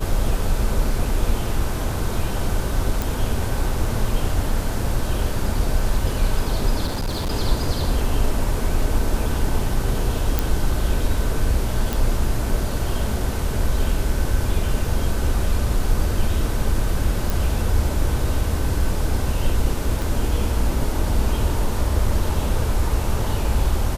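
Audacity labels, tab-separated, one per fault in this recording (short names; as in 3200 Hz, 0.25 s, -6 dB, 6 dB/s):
3.020000	3.020000	pop
6.860000	7.310000	clipped -20 dBFS
10.390000	10.390000	pop
11.930000	11.930000	pop
17.300000	17.300000	pop
20.020000	20.020000	pop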